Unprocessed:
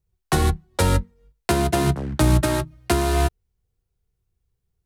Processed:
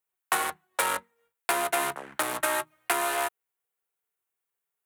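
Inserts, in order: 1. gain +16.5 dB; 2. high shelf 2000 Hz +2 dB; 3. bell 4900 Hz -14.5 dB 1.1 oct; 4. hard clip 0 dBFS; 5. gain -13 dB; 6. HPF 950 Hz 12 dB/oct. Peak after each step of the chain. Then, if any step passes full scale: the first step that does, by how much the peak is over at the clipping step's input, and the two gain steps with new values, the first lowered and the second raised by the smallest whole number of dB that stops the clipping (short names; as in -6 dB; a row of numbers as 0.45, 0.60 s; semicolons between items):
+9.0, +9.5, +9.0, 0.0, -13.0, -7.5 dBFS; step 1, 9.0 dB; step 1 +7.5 dB, step 5 -4 dB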